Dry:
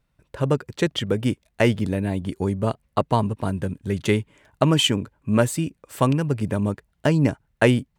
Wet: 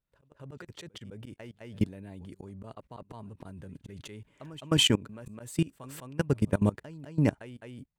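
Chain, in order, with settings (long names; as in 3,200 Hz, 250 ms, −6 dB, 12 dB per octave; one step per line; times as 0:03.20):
echo ahead of the sound 208 ms −22 dB
volume swells 203 ms
output level in coarse steps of 22 dB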